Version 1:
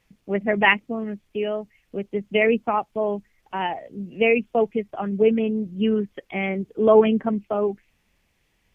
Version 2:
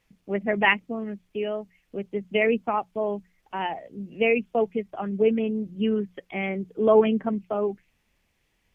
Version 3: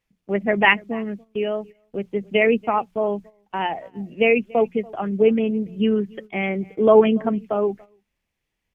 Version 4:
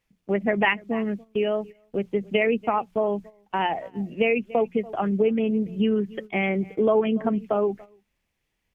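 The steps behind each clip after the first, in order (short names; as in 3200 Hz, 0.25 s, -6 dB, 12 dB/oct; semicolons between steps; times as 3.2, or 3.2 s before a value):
notches 60/120/180 Hz; gain -3 dB
outdoor echo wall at 49 m, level -24 dB; gate -42 dBFS, range -13 dB; gain +4.5 dB
compressor 3:1, threshold -22 dBFS, peak gain reduction 11 dB; gain +2 dB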